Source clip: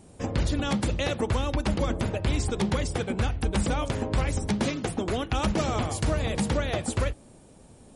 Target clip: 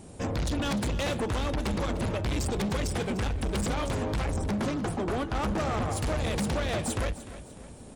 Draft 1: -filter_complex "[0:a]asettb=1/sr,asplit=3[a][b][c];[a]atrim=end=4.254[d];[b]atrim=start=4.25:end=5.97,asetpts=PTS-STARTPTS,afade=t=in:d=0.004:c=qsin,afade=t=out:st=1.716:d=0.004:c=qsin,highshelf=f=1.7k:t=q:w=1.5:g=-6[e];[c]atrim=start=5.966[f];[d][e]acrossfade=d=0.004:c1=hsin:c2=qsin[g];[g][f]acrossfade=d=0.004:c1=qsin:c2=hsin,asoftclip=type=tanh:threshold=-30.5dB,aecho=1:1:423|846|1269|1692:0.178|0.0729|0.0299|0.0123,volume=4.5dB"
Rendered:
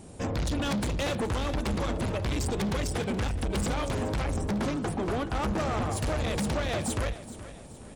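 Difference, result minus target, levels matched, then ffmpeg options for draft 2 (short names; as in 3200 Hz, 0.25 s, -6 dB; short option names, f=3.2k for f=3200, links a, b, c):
echo 0.123 s late
-filter_complex "[0:a]asettb=1/sr,asplit=3[a][b][c];[a]atrim=end=4.254[d];[b]atrim=start=4.25:end=5.97,asetpts=PTS-STARTPTS,afade=t=in:d=0.004:c=qsin,afade=t=out:st=1.716:d=0.004:c=qsin,highshelf=f=1.7k:t=q:w=1.5:g=-6[e];[c]atrim=start=5.966[f];[d][e]acrossfade=d=0.004:c1=hsin:c2=qsin[g];[g][f]acrossfade=d=0.004:c1=qsin:c2=hsin,asoftclip=type=tanh:threshold=-30.5dB,aecho=1:1:300|600|900|1200:0.178|0.0729|0.0299|0.0123,volume=4.5dB"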